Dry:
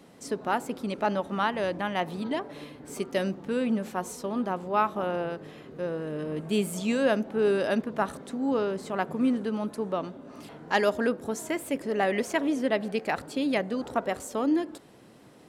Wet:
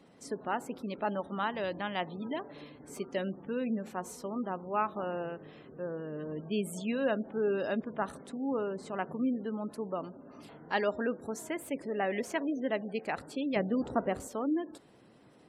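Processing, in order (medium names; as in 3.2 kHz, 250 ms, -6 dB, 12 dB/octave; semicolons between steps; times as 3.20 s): 1.56–2.02 s: peaking EQ 4.5 kHz +5.5 dB 1.7 oct; spectral gate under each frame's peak -30 dB strong; 13.56–14.28 s: bass shelf 450 Hz +9.5 dB; trim -6 dB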